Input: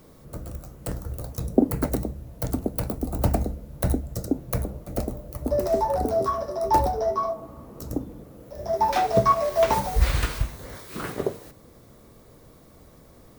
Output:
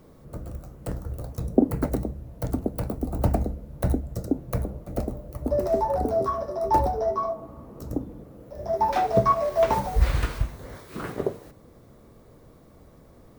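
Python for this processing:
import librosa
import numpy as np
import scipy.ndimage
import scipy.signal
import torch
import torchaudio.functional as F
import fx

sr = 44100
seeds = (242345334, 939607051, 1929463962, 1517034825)

y = fx.high_shelf(x, sr, hz=2300.0, db=-8.0)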